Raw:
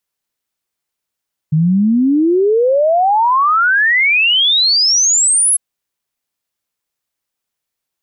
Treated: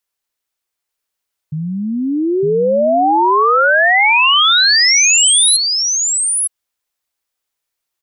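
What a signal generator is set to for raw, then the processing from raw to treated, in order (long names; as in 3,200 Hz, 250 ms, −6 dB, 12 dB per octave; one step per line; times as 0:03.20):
exponential sine sweep 150 Hz → 11,000 Hz 4.05 s −9 dBFS
parametric band 170 Hz −9 dB 1.6 octaves
on a send: single-tap delay 906 ms −4 dB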